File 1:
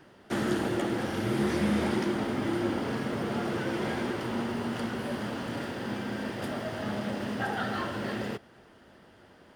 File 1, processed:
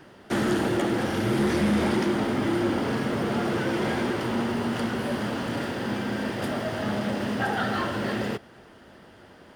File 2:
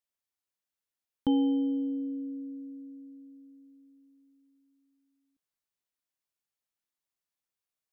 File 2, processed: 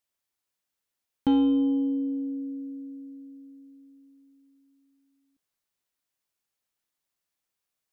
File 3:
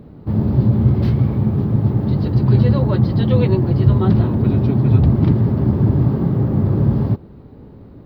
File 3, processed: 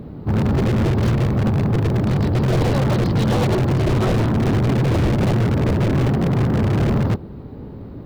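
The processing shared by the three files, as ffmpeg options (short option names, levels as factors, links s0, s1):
-af "aeval=exprs='0.251*(abs(mod(val(0)/0.251+3,4)-2)-1)':c=same,aeval=exprs='0.251*(cos(1*acos(clip(val(0)/0.251,-1,1)))-cos(1*PI/2))+0.0447*(cos(5*acos(clip(val(0)/0.251,-1,1)))-cos(5*PI/2))':c=same"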